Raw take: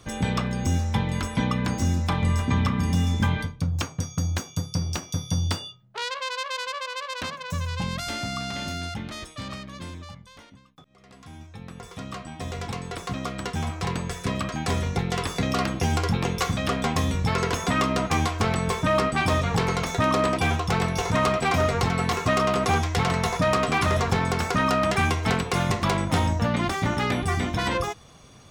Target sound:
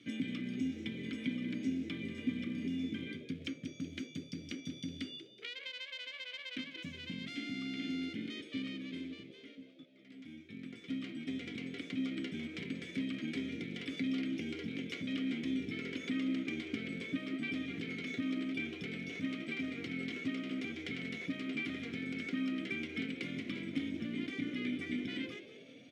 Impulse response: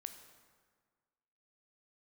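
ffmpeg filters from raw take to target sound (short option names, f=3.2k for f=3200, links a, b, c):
-filter_complex "[0:a]highpass=f=94:w=0.5412,highpass=f=94:w=1.3066,bandreject=f=1.1k:w=13,acompressor=threshold=-30dB:ratio=6,acrusher=bits=5:mode=log:mix=0:aa=0.000001,atempo=1.1,asplit=3[a][b][c];[a]bandpass=f=270:t=q:w=8,volume=0dB[d];[b]bandpass=f=2.29k:t=q:w=8,volume=-6dB[e];[c]bandpass=f=3.01k:t=q:w=8,volume=-9dB[f];[d][e][f]amix=inputs=3:normalize=0,asplit=7[g][h][i][j][k][l][m];[h]adelay=187,afreqshift=66,volume=-14dB[n];[i]adelay=374,afreqshift=132,volume=-19.2dB[o];[j]adelay=561,afreqshift=198,volume=-24.4dB[p];[k]adelay=748,afreqshift=264,volume=-29.6dB[q];[l]adelay=935,afreqshift=330,volume=-34.8dB[r];[m]adelay=1122,afreqshift=396,volume=-40dB[s];[g][n][o][p][q][r][s]amix=inputs=7:normalize=0,volume=6.5dB"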